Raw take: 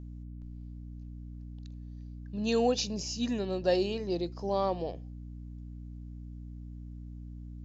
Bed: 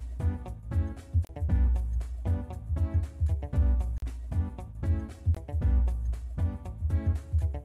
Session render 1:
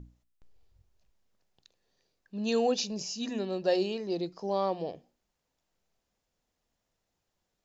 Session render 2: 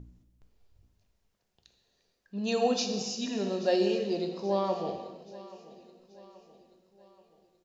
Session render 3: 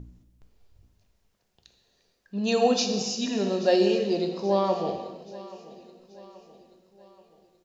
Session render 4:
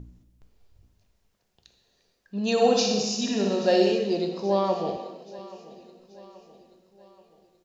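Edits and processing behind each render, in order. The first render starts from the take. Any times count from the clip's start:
notches 60/120/180/240/300 Hz
feedback echo 0.83 s, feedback 48%, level -19 dB; non-linear reverb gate 0.5 s falling, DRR 4 dB
gain +5 dB
2.51–3.92 flutter echo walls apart 10.7 m, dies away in 0.74 s; 4.97–5.39 HPF 200 Hz

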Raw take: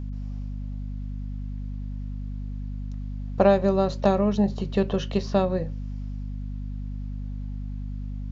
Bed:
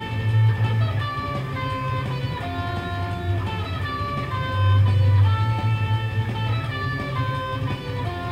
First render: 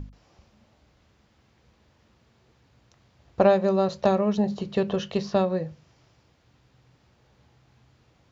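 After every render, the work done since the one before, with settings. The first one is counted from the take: notches 50/100/150/200/250 Hz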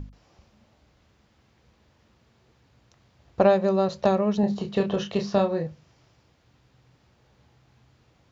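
4.4–5.67 doubler 30 ms -6 dB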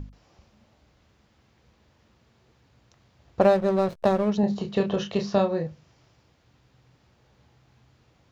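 3.41–4.32 backlash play -29 dBFS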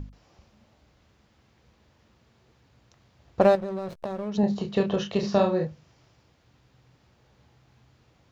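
3.55–4.35 compressor 10:1, threshold -28 dBFS; 5.18–5.65 doubler 49 ms -5.5 dB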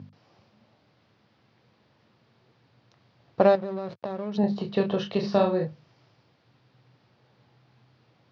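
elliptic band-pass 110–4900 Hz, stop band 40 dB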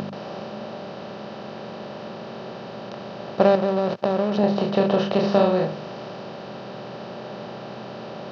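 per-bin compression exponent 0.4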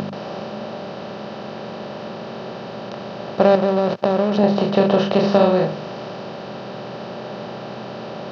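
gain +4 dB; limiter -2 dBFS, peak gain reduction 2.5 dB

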